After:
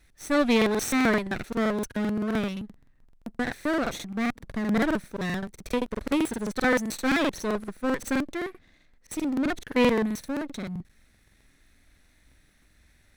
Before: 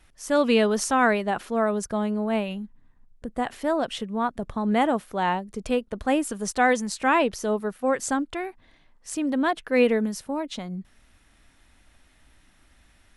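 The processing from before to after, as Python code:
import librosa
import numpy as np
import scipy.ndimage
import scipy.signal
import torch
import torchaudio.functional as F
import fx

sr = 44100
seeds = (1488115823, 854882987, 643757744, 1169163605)

y = fx.lower_of_two(x, sr, delay_ms=0.49)
y = fx.buffer_crackle(y, sr, first_s=0.57, period_s=0.13, block=2048, kind='repeat')
y = y * librosa.db_to_amplitude(-1.5)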